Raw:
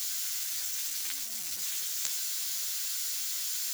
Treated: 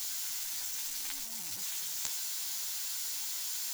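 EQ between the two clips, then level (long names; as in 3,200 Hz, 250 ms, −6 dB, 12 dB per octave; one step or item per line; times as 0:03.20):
low-shelf EQ 300 Hz +9.5 dB
parametric band 890 Hz +10 dB 0.36 octaves
−3.5 dB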